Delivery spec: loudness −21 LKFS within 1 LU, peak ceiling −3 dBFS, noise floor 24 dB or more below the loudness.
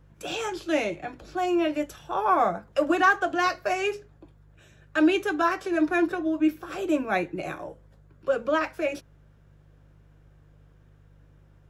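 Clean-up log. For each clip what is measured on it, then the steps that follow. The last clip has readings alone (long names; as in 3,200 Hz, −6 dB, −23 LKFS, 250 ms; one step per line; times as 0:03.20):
mains hum 50 Hz; hum harmonics up to 150 Hz; level of the hum −53 dBFS; integrated loudness −26.0 LKFS; sample peak −8.5 dBFS; target loudness −21.0 LKFS
→ hum removal 50 Hz, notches 3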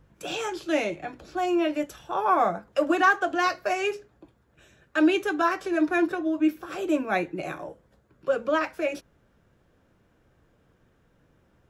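mains hum none found; integrated loudness −26.0 LKFS; sample peak −8.5 dBFS; target loudness −21.0 LKFS
→ level +5 dB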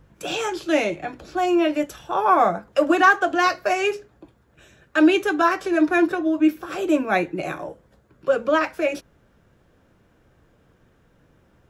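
integrated loudness −21.0 LKFS; sample peak −3.5 dBFS; background noise floor −60 dBFS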